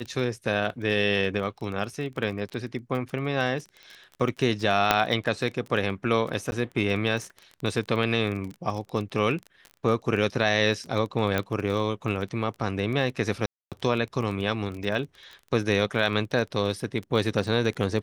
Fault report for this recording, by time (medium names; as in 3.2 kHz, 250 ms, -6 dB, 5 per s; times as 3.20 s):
crackle 24 per s -32 dBFS
4.91 s: pop -4 dBFS
6.51–6.52 s: dropout 11 ms
11.38 s: pop -12 dBFS
13.46–13.72 s: dropout 257 ms